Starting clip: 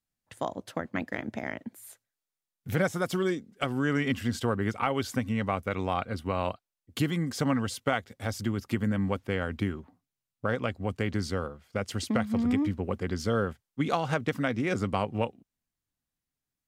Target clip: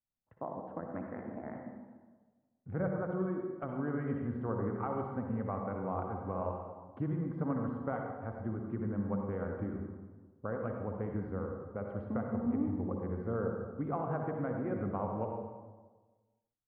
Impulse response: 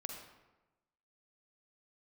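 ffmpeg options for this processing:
-filter_complex "[0:a]lowpass=f=1.3k:w=0.5412,lowpass=f=1.3k:w=1.3066[a];[1:a]atrim=start_sample=2205,asetrate=33957,aresample=44100[b];[a][b]afir=irnorm=-1:irlink=0,volume=-6dB"

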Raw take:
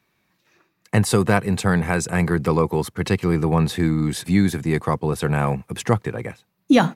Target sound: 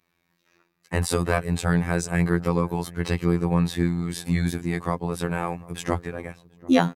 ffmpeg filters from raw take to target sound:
-filter_complex "[0:a]asplit=2[a][b];[b]adelay=742,lowpass=f=820:p=1,volume=-20dB,asplit=2[c][d];[d]adelay=742,lowpass=f=820:p=1,volume=0.36,asplit=2[e][f];[f]adelay=742,lowpass=f=820:p=1,volume=0.36[g];[a][c][e][g]amix=inputs=4:normalize=0,afftfilt=real='hypot(re,im)*cos(PI*b)':imag='0':win_size=2048:overlap=0.75,volume=-1dB"

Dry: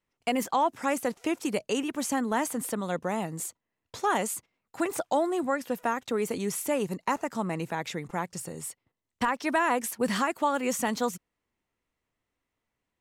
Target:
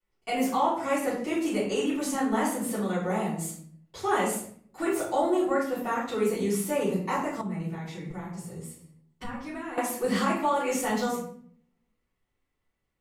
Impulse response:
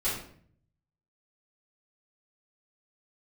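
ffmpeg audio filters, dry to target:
-filter_complex "[1:a]atrim=start_sample=2205[a];[0:a][a]afir=irnorm=-1:irlink=0,asettb=1/sr,asplit=3[b][c][d];[b]atrim=end=7.414[e];[c]atrim=start=7.41:end=9.78,asetpts=PTS-STARTPTS,afade=t=in:d=0.004:c=qsin,afade=t=out:st=2.366:d=0.004:c=qsin,acrossover=split=220[f][g];[g]acompressor=threshold=-41dB:ratio=2[h];[f][h]amix=inputs=2:normalize=0[i];[d]atrim=start=9.776[j];[e][i]acrossfade=d=0.004:c1=hsin:c2=qsin[k];[k][j]acrossfade=d=0.004:c1=qsin:c2=hsin,volume=-7dB"

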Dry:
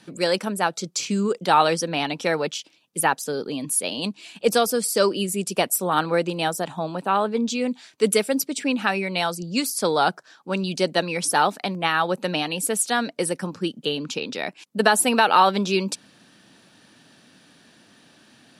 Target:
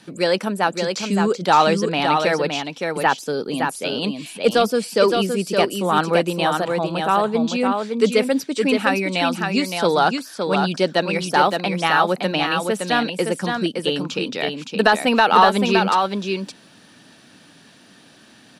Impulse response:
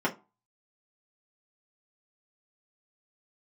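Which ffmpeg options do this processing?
-filter_complex "[0:a]asoftclip=type=tanh:threshold=-5.5dB,acrossover=split=4700[a][b];[b]acompressor=threshold=-41dB:ratio=4:attack=1:release=60[c];[a][c]amix=inputs=2:normalize=0,asplit=2[d][e];[e]aecho=0:1:566:0.562[f];[d][f]amix=inputs=2:normalize=0,volume=3.5dB"

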